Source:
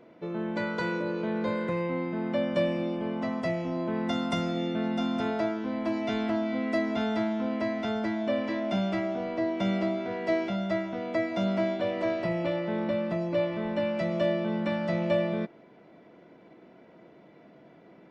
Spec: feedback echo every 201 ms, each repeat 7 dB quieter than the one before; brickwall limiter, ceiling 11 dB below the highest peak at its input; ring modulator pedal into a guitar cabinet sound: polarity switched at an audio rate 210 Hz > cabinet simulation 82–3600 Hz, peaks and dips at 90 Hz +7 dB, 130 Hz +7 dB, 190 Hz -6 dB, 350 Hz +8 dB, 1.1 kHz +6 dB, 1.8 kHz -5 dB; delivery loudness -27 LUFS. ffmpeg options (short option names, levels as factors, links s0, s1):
-af "alimiter=level_in=1.33:limit=0.0631:level=0:latency=1,volume=0.75,aecho=1:1:201|402|603|804|1005:0.447|0.201|0.0905|0.0407|0.0183,aeval=exprs='val(0)*sgn(sin(2*PI*210*n/s))':c=same,highpass=82,equalizer=f=90:t=q:w=4:g=7,equalizer=f=130:t=q:w=4:g=7,equalizer=f=190:t=q:w=4:g=-6,equalizer=f=350:t=q:w=4:g=8,equalizer=f=1100:t=q:w=4:g=6,equalizer=f=1800:t=q:w=4:g=-5,lowpass=f=3600:w=0.5412,lowpass=f=3600:w=1.3066,volume=1.78"